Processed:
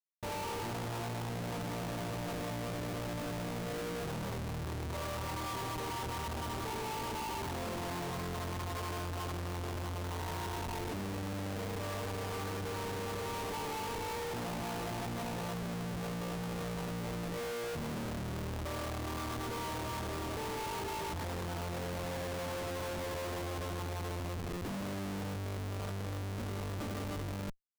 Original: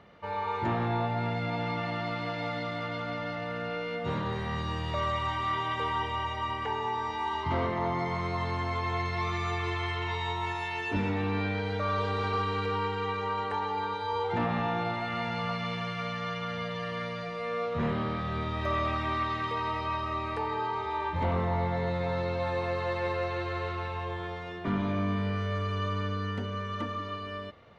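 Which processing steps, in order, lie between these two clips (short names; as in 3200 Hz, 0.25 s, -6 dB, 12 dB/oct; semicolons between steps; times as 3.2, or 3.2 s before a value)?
elliptic low-pass 1100 Hz, stop band 40 dB; Schmitt trigger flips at -39 dBFS; gain -5 dB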